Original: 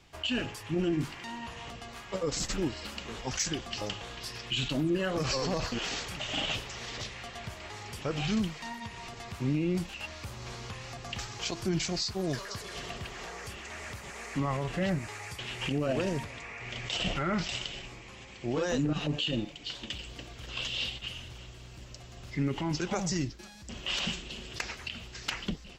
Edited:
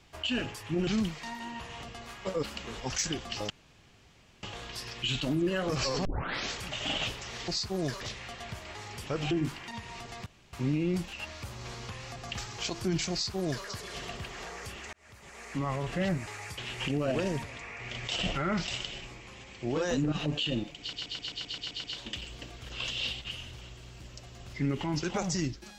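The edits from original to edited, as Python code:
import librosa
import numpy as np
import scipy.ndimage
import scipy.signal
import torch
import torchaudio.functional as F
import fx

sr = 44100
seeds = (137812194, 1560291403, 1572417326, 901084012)

y = fx.edit(x, sr, fx.swap(start_s=0.87, length_s=0.4, other_s=8.26, other_length_s=0.53),
    fx.cut(start_s=2.3, length_s=0.54),
    fx.insert_room_tone(at_s=3.91, length_s=0.93),
    fx.tape_start(start_s=5.53, length_s=0.45),
    fx.insert_room_tone(at_s=9.34, length_s=0.27),
    fx.duplicate(start_s=11.93, length_s=0.53, to_s=6.96),
    fx.fade_in_span(start_s=13.74, length_s=1.14, curve='qsin'),
    fx.stutter(start_s=19.61, slice_s=0.13, count=9), tone=tone)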